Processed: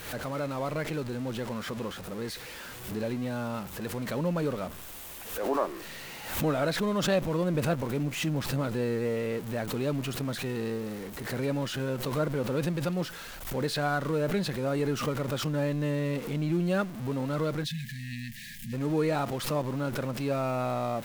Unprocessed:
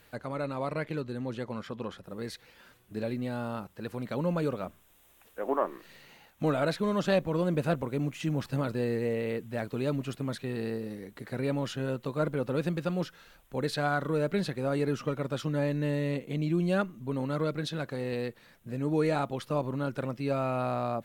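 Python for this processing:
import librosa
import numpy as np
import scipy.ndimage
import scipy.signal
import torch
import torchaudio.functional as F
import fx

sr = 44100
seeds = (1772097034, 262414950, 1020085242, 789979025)

y = x + 0.5 * 10.0 ** (-37.0 / 20.0) * np.sign(x)
y = fx.spec_erase(y, sr, start_s=17.64, length_s=1.09, low_hz=250.0, high_hz=1600.0)
y = fx.pre_swell(y, sr, db_per_s=77.0)
y = F.gain(torch.from_numpy(y), -1.0).numpy()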